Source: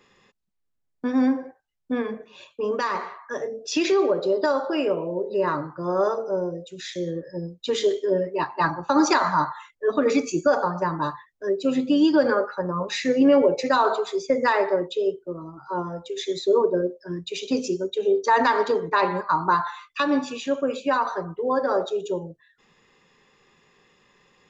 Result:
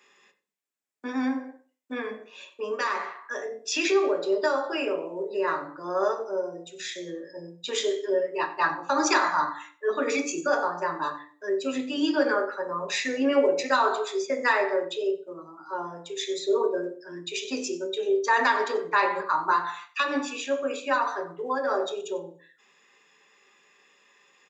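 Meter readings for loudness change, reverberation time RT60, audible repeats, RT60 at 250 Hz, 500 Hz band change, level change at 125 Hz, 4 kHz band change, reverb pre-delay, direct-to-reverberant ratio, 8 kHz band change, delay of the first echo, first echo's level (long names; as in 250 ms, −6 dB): −3.5 dB, 0.40 s, 1, 0.50 s, −4.0 dB, −15.0 dB, −0.5 dB, 3 ms, 5.0 dB, can't be measured, 94 ms, −19.0 dB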